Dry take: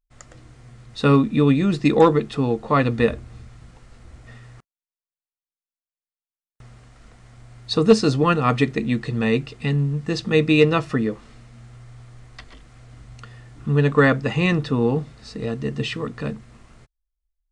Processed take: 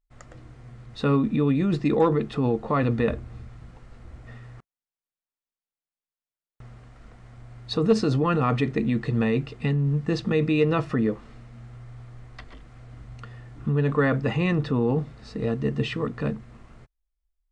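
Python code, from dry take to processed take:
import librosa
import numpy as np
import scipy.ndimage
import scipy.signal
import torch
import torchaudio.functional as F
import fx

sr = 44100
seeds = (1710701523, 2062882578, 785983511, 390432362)

p1 = fx.high_shelf(x, sr, hz=3400.0, db=-11.5)
p2 = fx.over_compress(p1, sr, threshold_db=-22.0, ratio=-0.5)
p3 = p1 + (p2 * 10.0 ** (-2.0 / 20.0))
y = p3 * 10.0 ** (-6.5 / 20.0)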